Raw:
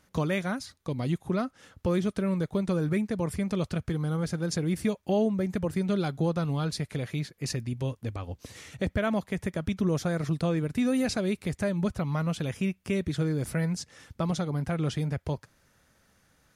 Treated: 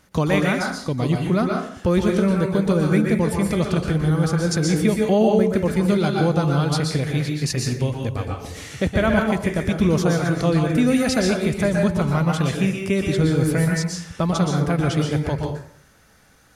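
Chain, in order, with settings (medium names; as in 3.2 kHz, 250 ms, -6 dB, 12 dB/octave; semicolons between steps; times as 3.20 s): plate-style reverb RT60 0.56 s, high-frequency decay 0.75×, pre-delay 110 ms, DRR 0 dB; trim +7.5 dB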